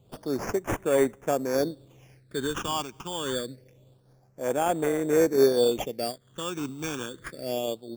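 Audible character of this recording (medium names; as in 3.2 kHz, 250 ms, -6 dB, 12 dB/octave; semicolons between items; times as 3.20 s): aliases and images of a low sample rate 4 kHz, jitter 0%; phasing stages 8, 0.26 Hz, lowest notch 550–4700 Hz; random flutter of the level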